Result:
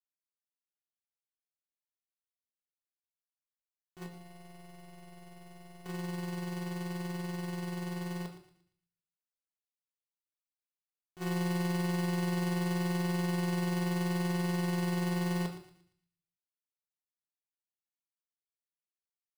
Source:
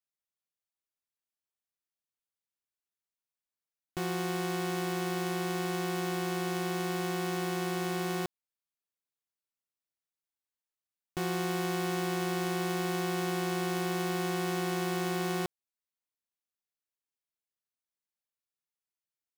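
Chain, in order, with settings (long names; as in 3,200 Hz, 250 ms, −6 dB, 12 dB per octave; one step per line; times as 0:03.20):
noise gate −30 dBFS, range −21 dB
0:04.06–0:05.86: tuned comb filter 140 Hz, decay 0.58 s, harmonics all, mix 90%
feedback echo with a high-pass in the loop 116 ms, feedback 38%, high-pass 930 Hz, level −11.5 dB
rectangular room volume 490 cubic metres, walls furnished, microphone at 1.4 metres
level +1.5 dB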